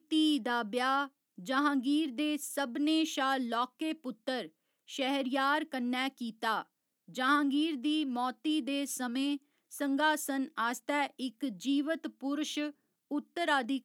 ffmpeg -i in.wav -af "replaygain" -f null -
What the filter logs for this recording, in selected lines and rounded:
track_gain = +12.8 dB
track_peak = 0.118